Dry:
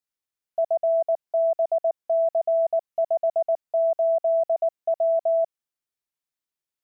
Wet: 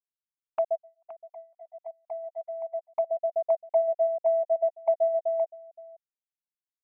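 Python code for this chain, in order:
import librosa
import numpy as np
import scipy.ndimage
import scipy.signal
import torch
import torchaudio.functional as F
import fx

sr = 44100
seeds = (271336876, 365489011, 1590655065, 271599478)

y = fx.highpass(x, sr, hz=fx.line((0.75, 810.0), (2.9, 650.0)), slope=24, at=(0.75, 2.9), fade=0.02)
y = fx.transient(y, sr, attack_db=4, sustain_db=-5)
y = fx.env_flanger(y, sr, rest_ms=8.2, full_db=-22.0)
y = y + 10.0 ** (-7.5 / 20.0) * np.pad(y, (int(520 * sr / 1000.0), 0))[:len(y)]
y = fx.upward_expand(y, sr, threshold_db=-35.0, expansion=2.5)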